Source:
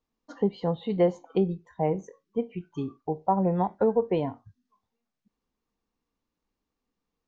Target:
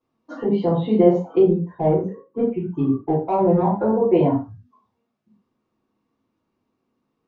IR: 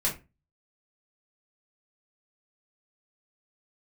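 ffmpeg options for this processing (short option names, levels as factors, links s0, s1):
-filter_complex "[0:a]highpass=250,aemphasis=mode=reproduction:type=riaa,alimiter=limit=0.141:level=0:latency=1:release=38,asettb=1/sr,asplit=3[s0][s1][s2];[s0]atrim=end=1.484[s3];[s1]atrim=start=1.48:end=3.62,asetpts=PTS-STARTPTS,afade=t=in:d=0.004:c=qsin,afade=t=out:st=2.136:d=0.004:c=qsin,adynamicsmooth=sensitivity=2:basefreq=2300[s4];[s2]atrim=start=3.616[s5];[s3][s4]acrossfade=d=0.004:c1=hsin:c2=qsin[s6];[s6][s5]acrossfade=d=0.004:c1=qsin:c2=hsin[s7];[1:a]atrim=start_sample=2205,afade=t=out:st=0.14:d=0.01,atrim=end_sample=6615,asetrate=27342,aresample=44100[s8];[s7][s8]afir=irnorm=-1:irlink=0,volume=0.841"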